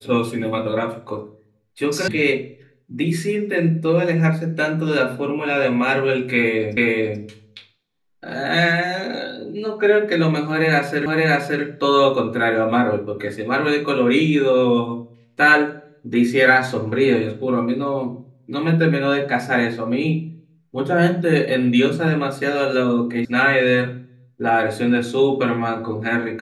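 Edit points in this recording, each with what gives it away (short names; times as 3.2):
2.08 sound cut off
6.77 repeat of the last 0.43 s
11.06 repeat of the last 0.57 s
23.25 sound cut off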